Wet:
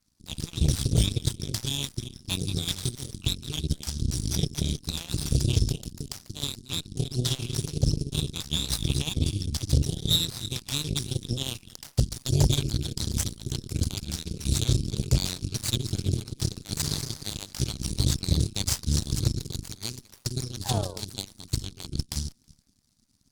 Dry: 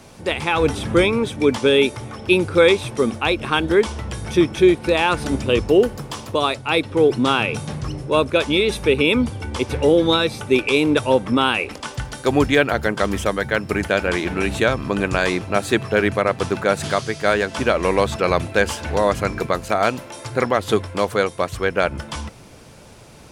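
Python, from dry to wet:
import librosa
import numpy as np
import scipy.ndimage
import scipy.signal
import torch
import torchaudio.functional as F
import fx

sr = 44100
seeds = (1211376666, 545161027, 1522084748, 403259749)

y = fx.reverse_delay_fb(x, sr, ms=161, feedback_pct=41, wet_db=-10.0)
y = scipy.signal.sosfilt(scipy.signal.ellip(3, 1.0, 40, [140.0, 4400.0], 'bandstop', fs=sr, output='sos'), y)
y = fx.spec_paint(y, sr, seeds[0], shape='fall', start_s=20.64, length_s=0.37, low_hz=410.0, high_hz=870.0, level_db=-39.0)
y = scipy.signal.sosfilt(scipy.signal.butter(2, 11000.0, 'lowpass', fs=sr, output='sos'), y)
y = fx.cheby_harmonics(y, sr, harmonics=(3, 5, 7, 8), levels_db=(-40, -14, -11, -25), full_scale_db=-15.0)
y = y * librosa.db_to_amplitude(4.5)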